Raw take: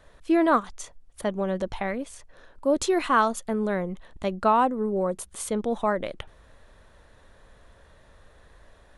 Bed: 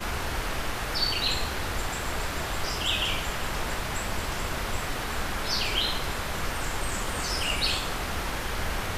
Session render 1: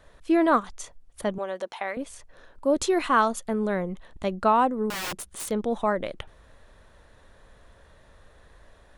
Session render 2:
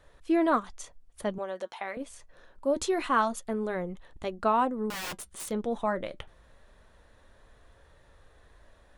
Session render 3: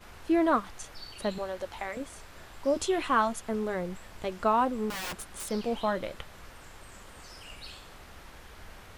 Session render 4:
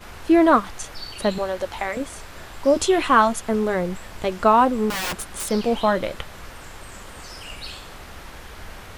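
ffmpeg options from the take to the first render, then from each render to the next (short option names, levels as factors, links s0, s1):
-filter_complex "[0:a]asettb=1/sr,asplit=3[s0][s1][s2];[s0]atrim=end=1.384[s3];[s1]atrim=start=1.38:end=1.97,asetpts=PTS-STARTPTS,afade=t=in:d=0.004:c=qsin,afade=t=out:st=0.586:d=0.004:c=qsin,highpass=530[s4];[s2]atrim=start=1.966[s5];[s3][s4]acrossfade=d=0.004:c1=hsin:c2=qsin[s6];[s6][s5]acrossfade=d=0.004:c1=qsin:c2=hsin,asettb=1/sr,asplit=3[s7][s8][s9];[s7]atrim=end=4.904[s10];[s8]atrim=start=4.9:end=5.51,asetpts=PTS-STARTPTS,afade=t=in:d=0.004:c=qsin,afade=t=out:st=0.606:d=0.004:c=qsin,aeval=exprs='(mod(22.4*val(0)+1,2)-1)/22.4':c=same[s11];[s9]atrim=start=5.506[s12];[s10][s11]acrossfade=d=0.004:c1=hsin:c2=qsin[s13];[s13][s12]acrossfade=d=0.004:c1=qsin:c2=hsin"
-af "flanger=delay=2.3:depth=3.7:regen=-70:speed=0.25:shape=sinusoidal"
-filter_complex "[1:a]volume=0.112[s0];[0:a][s0]amix=inputs=2:normalize=0"
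-af "volume=2.99"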